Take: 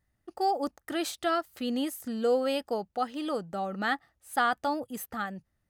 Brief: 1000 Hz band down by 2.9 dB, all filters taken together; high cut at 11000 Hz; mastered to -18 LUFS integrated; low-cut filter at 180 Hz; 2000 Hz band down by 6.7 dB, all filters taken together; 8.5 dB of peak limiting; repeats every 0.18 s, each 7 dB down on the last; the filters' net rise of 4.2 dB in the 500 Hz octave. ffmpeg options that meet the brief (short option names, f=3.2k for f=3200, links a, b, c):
-af "highpass=180,lowpass=11k,equalizer=f=500:t=o:g=6.5,equalizer=f=1k:t=o:g=-6,equalizer=f=2k:t=o:g=-7,alimiter=limit=-22dB:level=0:latency=1,aecho=1:1:180|360|540|720|900:0.447|0.201|0.0905|0.0407|0.0183,volume=14dB"